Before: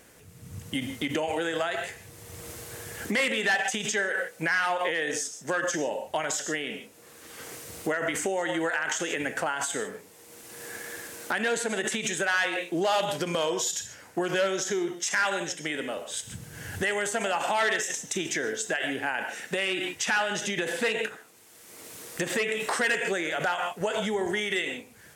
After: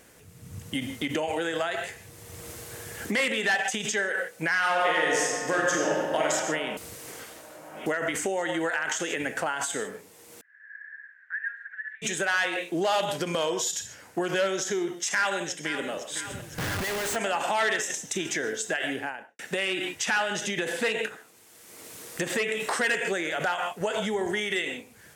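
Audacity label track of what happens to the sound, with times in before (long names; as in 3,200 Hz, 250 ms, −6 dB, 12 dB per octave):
4.580000	6.270000	thrown reverb, RT60 2.3 s, DRR −2 dB
6.770000	7.860000	reverse
10.410000	12.020000	flat-topped band-pass 1,700 Hz, Q 6.3
15.120000	15.900000	delay throw 510 ms, feedback 70%, level −11.5 dB
16.580000	17.160000	comparator with hysteresis flips at −42 dBFS
18.920000	19.390000	fade out and dull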